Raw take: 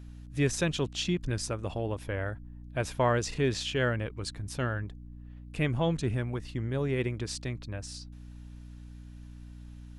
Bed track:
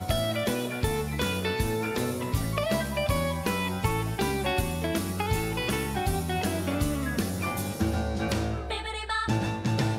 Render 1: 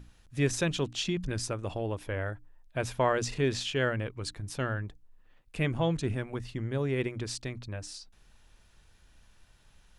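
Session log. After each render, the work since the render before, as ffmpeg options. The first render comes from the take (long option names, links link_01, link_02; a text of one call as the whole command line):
ffmpeg -i in.wav -af "bandreject=frequency=60:width_type=h:width=6,bandreject=frequency=120:width_type=h:width=6,bandreject=frequency=180:width_type=h:width=6,bandreject=frequency=240:width_type=h:width=6,bandreject=frequency=300:width_type=h:width=6" out.wav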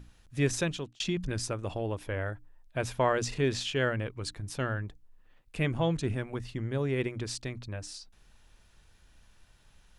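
ffmpeg -i in.wav -filter_complex "[0:a]asplit=2[link_01][link_02];[link_01]atrim=end=1,asetpts=PTS-STARTPTS,afade=type=out:start_time=0.59:duration=0.41[link_03];[link_02]atrim=start=1,asetpts=PTS-STARTPTS,afade=type=in:duration=0.004:curve=hsin[link_04];[link_03][link_04]concat=n=2:v=0:a=1" out.wav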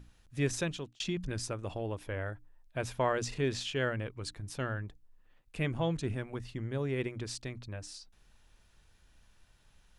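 ffmpeg -i in.wav -af "volume=-3.5dB" out.wav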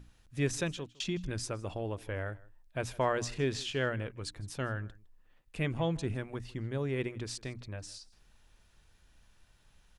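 ffmpeg -i in.wav -af "aecho=1:1:159:0.075" out.wav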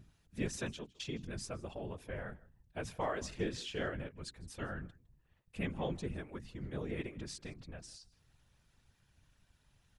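ffmpeg -i in.wav -af "afftfilt=real='hypot(re,im)*cos(2*PI*random(0))':imag='hypot(re,im)*sin(2*PI*random(1))':win_size=512:overlap=0.75" out.wav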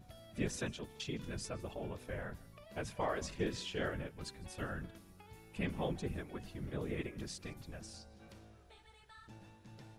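ffmpeg -i in.wav -i bed.wav -filter_complex "[1:a]volume=-29dB[link_01];[0:a][link_01]amix=inputs=2:normalize=0" out.wav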